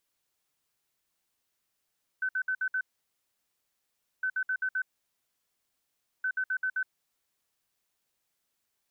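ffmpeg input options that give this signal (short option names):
-f lavfi -i "aevalsrc='0.0473*sin(2*PI*1520*t)*clip(min(mod(mod(t,2.01),0.13),0.07-mod(mod(t,2.01),0.13))/0.005,0,1)*lt(mod(t,2.01),0.65)':d=6.03:s=44100"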